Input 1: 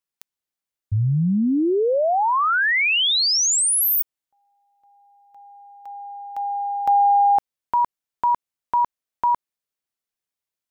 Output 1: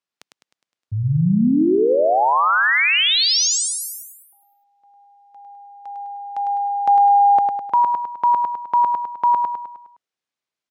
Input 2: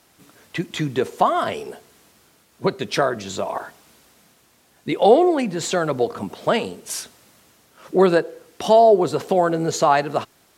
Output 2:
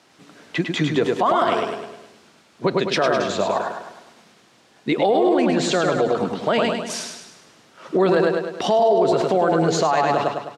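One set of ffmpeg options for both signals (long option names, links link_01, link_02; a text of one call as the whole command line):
ffmpeg -i in.wav -filter_complex "[0:a]highpass=140,lowpass=5700,asplit=2[link_01][link_02];[link_02]aecho=0:1:103|206|309|412|515|618:0.562|0.276|0.135|0.0662|0.0324|0.0159[link_03];[link_01][link_03]amix=inputs=2:normalize=0,alimiter=limit=-13dB:level=0:latency=1:release=39,volume=3.5dB" out.wav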